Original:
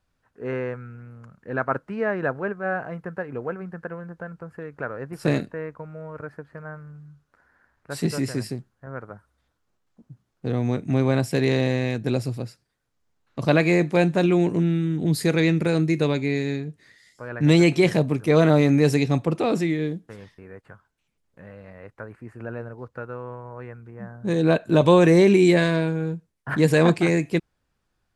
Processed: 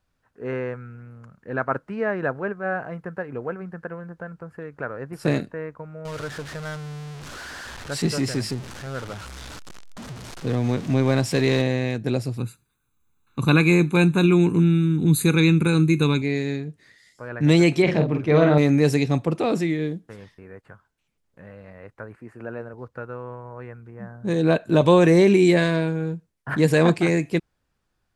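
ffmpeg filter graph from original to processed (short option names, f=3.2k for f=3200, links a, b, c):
-filter_complex "[0:a]asettb=1/sr,asplit=3[a][b][c];[a]atrim=end=6.054[d];[b]atrim=start=6.05:end=11.62,asetpts=PTS-STARTPTS,afade=t=in:d=0.004:c=qsin,afade=t=out:st=5.566:d=0.004:c=qsin,aeval=exprs='val(0)+0.5*0.0237*sgn(val(0))':c=same,lowpass=5.7k,aemphasis=mode=production:type=50kf[e];[c]atrim=start=11.616[f];[d][e]acrossfade=d=0.004:c1=hsin:c2=qsin[g];[g][f]acrossfade=d=0.004:c1=qsin:c2=hsin,asettb=1/sr,asplit=3[h][i][j];[h]atrim=end=12.384[k];[i]atrim=start=12.38:end=16.22,asetpts=PTS-STARTPTS,afade=t=in:d=0.004:c=qsin,afade=t=out:st=3.836:d=0.004:c=qsin,asuperstop=centerf=5200:order=4:qfactor=2.9,highshelf=f=9.8k:g=12,aecho=1:1:0.8:0.82,atrim=end_sample=169344[l];[j]atrim=start=16.216[m];[k][l]acrossfade=d=0.004:c1=hsin:c2=qsin[n];[n][m]acrossfade=d=0.004:c1=qsin:c2=hsin,asettb=1/sr,asplit=3[o][p][q];[o]atrim=end=17.824[r];[p]atrim=start=17.82:end=18.58,asetpts=PTS-STARTPTS,afade=t=in:d=0.004:c=qsin,afade=t=out:st=0.756:d=0.004:c=qsin,lowpass=3.5k,bandreject=f=60:t=h:w=6,bandreject=f=120:t=h:w=6,bandreject=f=180:t=h:w=6,bandreject=f=240:t=h:w=6,bandreject=f=300:t=h:w=6,bandreject=f=360:t=h:w=6,bandreject=f=420:t=h:w=6,bandreject=f=480:t=h:w=6,bandreject=f=540:t=h:w=6,bandreject=f=600:t=h:w=6,asplit=2[s][t];[t]adelay=47,volume=-6dB[u];[s][u]amix=inputs=2:normalize=0,atrim=end_sample=33516[v];[q]atrim=start=18.576[w];[r][v]acrossfade=d=0.004:c1=hsin:c2=qsin[x];[x][w]acrossfade=d=0.004:c1=qsin:c2=hsin,asettb=1/sr,asplit=3[y][z][aa];[y]atrim=end=22.174[ab];[z]atrim=start=22.17:end=22.74,asetpts=PTS-STARTPTS,afade=t=in:d=0.004:c=qsin,afade=t=out:st=0.566:d=0.004:c=qsin,highpass=f=370:p=1,lowshelf=f=470:g=6[ac];[aa]atrim=start=22.736[ad];[ab][ac]acrossfade=d=0.004:c1=hsin:c2=qsin[ae];[ae][ad]acrossfade=d=0.004:c1=qsin:c2=hsin"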